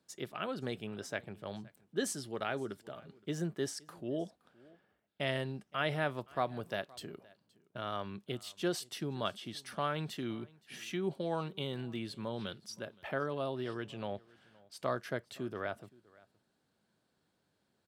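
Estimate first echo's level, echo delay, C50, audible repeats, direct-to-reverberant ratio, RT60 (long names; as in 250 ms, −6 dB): −24.0 dB, 519 ms, no reverb audible, 1, no reverb audible, no reverb audible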